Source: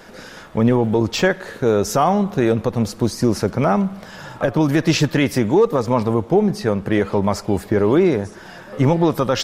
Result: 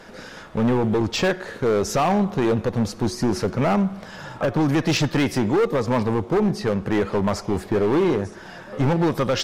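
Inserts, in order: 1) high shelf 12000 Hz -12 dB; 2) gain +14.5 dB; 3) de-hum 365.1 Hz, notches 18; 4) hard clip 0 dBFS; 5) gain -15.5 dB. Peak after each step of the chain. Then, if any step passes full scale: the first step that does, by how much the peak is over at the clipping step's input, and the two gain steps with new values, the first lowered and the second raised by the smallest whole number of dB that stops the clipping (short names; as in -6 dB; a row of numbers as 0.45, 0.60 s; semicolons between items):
-5.5, +9.0, +9.5, 0.0, -15.5 dBFS; step 2, 9.5 dB; step 2 +4.5 dB, step 5 -5.5 dB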